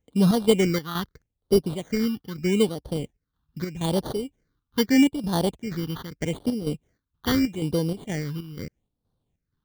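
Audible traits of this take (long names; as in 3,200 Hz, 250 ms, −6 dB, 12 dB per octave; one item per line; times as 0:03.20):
aliases and images of a low sample rate 2,600 Hz, jitter 0%
phaser sweep stages 6, 0.8 Hz, lowest notch 570–2,200 Hz
chopped level 2.1 Hz, depth 60%, duty 65%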